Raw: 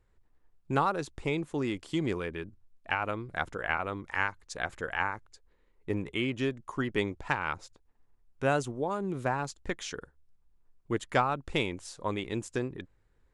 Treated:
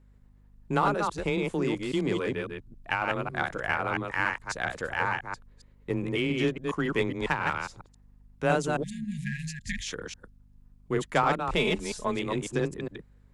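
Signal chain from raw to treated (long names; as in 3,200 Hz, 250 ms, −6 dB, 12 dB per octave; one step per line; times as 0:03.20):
delay that plays each chunk backwards 137 ms, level −3 dB
frequency shifter +18 Hz
0:11.57–0:12.16: comb filter 4.7 ms, depth 71%
in parallel at −10.5 dB: hard clipping −26.5 dBFS, distortion −9 dB
on the sum: mains hum 50 Hz, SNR 28 dB
0:08.83–0:09.87: time-frequency box erased 240–1,600 Hz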